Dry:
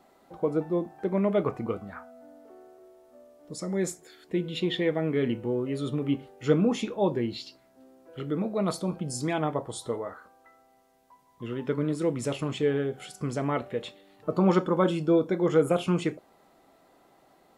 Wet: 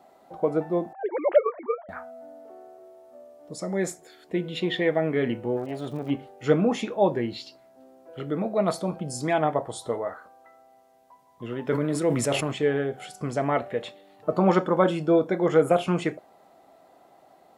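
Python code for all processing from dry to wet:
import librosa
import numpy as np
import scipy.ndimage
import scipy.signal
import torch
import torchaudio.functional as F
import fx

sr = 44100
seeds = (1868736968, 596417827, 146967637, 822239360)

y = fx.chain(x, sr, fx.sine_speech(),
    fx.highpass(hz=410.0, slope=12), at=(0.93, 1.89))
y = fx.tube_stage(y, sr, drive_db=26.0, bias=0.7, at=(5.56, 6.09), fade=0.02)
y = fx.dmg_crackle(y, sr, seeds[0], per_s=170.0, level_db=-43.0, at=(5.56, 6.09), fade=0.02)
y = fx.chain(y, sr, fx.high_shelf(hz=9100.0, db=7.0),
    fx.sustainer(db_per_s=33.0), at=(11.67, 12.52))
y = fx.dynamic_eq(y, sr, hz=1800.0, q=2.0, threshold_db=-50.0, ratio=4.0, max_db=6)
y = scipy.signal.sosfilt(scipy.signal.butter(2, 61.0, 'highpass', fs=sr, output='sos'), y)
y = fx.peak_eq(y, sr, hz=690.0, db=8.5, octaves=0.7)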